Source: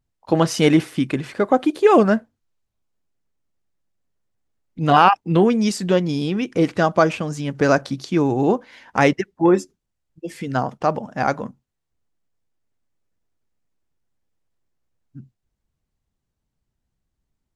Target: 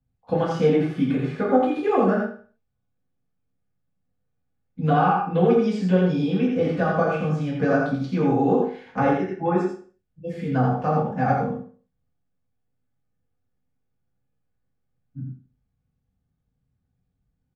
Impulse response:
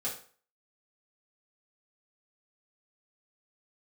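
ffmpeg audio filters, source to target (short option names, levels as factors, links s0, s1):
-filter_complex "[0:a]acrossover=split=83|310|1300|7000[s0][s1][s2][s3][s4];[s0]acompressor=threshold=0.00158:ratio=4[s5];[s1]acompressor=threshold=0.0316:ratio=4[s6];[s2]acompressor=threshold=0.141:ratio=4[s7];[s3]acompressor=threshold=0.0251:ratio=4[s8];[s4]acompressor=threshold=0.00141:ratio=4[s9];[s5][s6][s7][s8][s9]amix=inputs=5:normalize=0,bass=f=250:g=10,treble=f=4000:g=-11,aecho=1:1:84:0.668[s10];[1:a]atrim=start_sample=2205,afade=t=out:st=0.4:d=0.01,atrim=end_sample=18081[s11];[s10][s11]afir=irnorm=-1:irlink=0,volume=0.501"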